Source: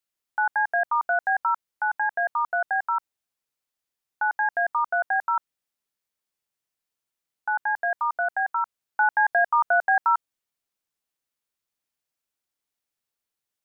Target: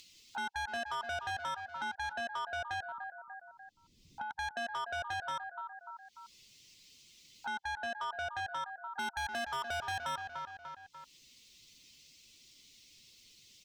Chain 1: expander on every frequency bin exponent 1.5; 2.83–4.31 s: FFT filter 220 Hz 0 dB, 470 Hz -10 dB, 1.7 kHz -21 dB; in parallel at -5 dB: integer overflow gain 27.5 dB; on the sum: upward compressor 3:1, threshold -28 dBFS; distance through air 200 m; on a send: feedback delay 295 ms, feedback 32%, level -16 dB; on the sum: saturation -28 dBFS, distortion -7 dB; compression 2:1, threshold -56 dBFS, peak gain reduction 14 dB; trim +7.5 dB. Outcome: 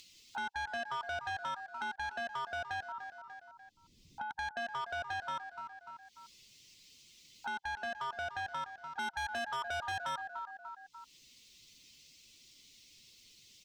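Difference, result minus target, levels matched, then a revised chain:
integer overflow: distortion +22 dB
expander on every frequency bin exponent 1.5; 2.83–4.31 s: FFT filter 220 Hz 0 dB, 470 Hz -10 dB, 1.7 kHz -21 dB; in parallel at -5 dB: integer overflow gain 18 dB; on the sum: upward compressor 3:1, threshold -28 dBFS; distance through air 200 m; on a send: feedback delay 295 ms, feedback 32%, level -16 dB; on the sum: saturation -28 dBFS, distortion -8 dB; compression 2:1, threshold -56 dBFS, peak gain reduction 14 dB; trim +7.5 dB

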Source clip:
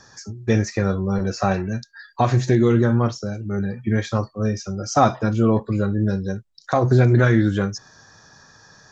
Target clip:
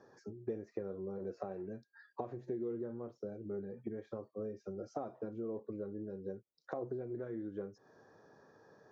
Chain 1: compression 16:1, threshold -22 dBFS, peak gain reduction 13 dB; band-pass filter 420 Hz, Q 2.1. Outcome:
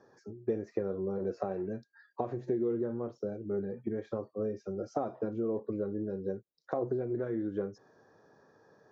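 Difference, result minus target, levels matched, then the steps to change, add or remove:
compression: peak gain reduction -8 dB
change: compression 16:1, threshold -30.5 dBFS, peak gain reduction 21 dB

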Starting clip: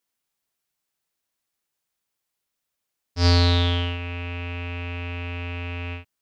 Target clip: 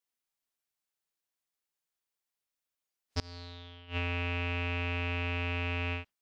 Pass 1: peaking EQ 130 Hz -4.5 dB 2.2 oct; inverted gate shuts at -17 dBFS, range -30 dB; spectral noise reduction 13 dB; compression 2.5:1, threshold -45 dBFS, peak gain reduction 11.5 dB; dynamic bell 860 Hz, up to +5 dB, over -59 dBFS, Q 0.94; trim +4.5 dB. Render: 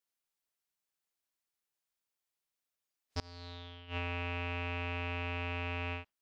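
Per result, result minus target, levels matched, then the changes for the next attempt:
compression: peak gain reduction +5 dB; 1 kHz band +4.0 dB
change: compression 2.5:1, threshold -36.5 dBFS, peak gain reduction 6.5 dB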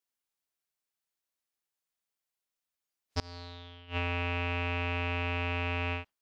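1 kHz band +3.5 dB
remove: dynamic bell 860 Hz, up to +5 dB, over -59 dBFS, Q 0.94

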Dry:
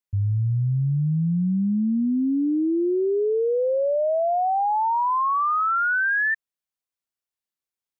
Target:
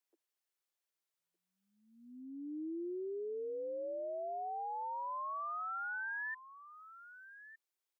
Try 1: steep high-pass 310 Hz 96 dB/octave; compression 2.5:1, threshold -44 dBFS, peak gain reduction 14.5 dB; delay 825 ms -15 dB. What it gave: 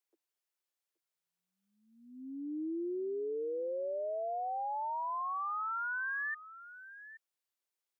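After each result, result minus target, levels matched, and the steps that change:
echo 387 ms early; compression: peak gain reduction -4 dB
change: delay 1212 ms -15 dB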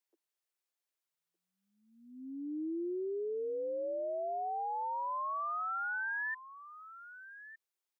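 compression: peak gain reduction -4 dB
change: compression 2.5:1, threshold -50.5 dBFS, peak gain reduction 18.5 dB

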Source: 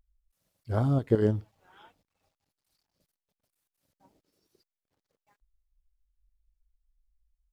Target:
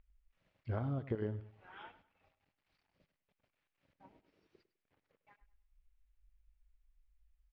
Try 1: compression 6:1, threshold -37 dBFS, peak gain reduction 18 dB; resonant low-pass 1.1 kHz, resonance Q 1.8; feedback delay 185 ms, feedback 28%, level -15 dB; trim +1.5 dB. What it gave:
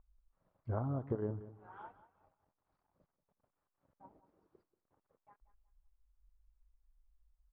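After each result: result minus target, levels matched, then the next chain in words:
echo 83 ms late; 2 kHz band -6.5 dB
compression 6:1, threshold -37 dBFS, peak gain reduction 18 dB; resonant low-pass 1.1 kHz, resonance Q 1.8; feedback delay 102 ms, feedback 28%, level -15 dB; trim +1.5 dB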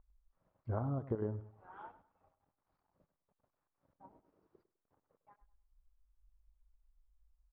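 2 kHz band -6.5 dB
compression 6:1, threshold -37 dBFS, peak gain reduction 18 dB; resonant low-pass 2.4 kHz, resonance Q 1.8; feedback delay 102 ms, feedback 28%, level -15 dB; trim +1.5 dB

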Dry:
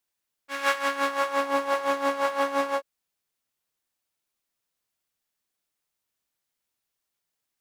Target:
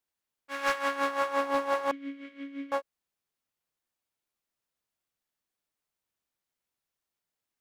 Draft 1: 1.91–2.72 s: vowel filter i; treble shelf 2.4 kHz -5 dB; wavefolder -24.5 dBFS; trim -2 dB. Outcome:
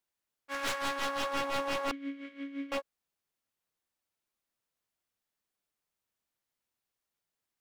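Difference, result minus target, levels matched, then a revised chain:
wavefolder: distortion +25 dB
1.91–2.72 s: vowel filter i; treble shelf 2.4 kHz -5 dB; wavefolder -14 dBFS; trim -2 dB

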